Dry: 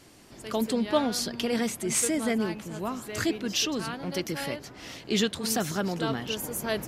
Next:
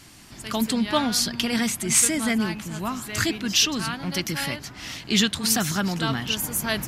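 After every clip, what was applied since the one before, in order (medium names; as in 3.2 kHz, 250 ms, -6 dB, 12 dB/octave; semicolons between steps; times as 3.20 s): peaking EQ 470 Hz -12.5 dB 1.3 oct; trim +8 dB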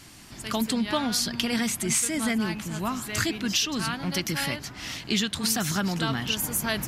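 compression 5:1, threshold -22 dBFS, peak gain reduction 8 dB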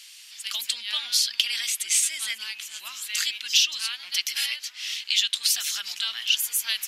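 resonant high-pass 3 kHz, resonance Q 1.8; trim +2 dB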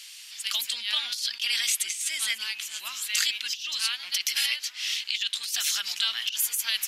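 compressor with a negative ratio -26 dBFS, ratio -0.5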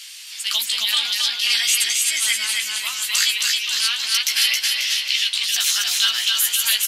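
doubling 14 ms -5 dB; feedback delay 270 ms, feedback 46%, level -3 dB; trim +5.5 dB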